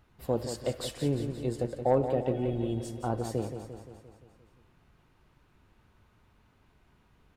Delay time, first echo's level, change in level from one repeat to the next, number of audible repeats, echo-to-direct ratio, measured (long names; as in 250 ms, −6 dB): 174 ms, −9.0 dB, −4.5 dB, 6, −7.0 dB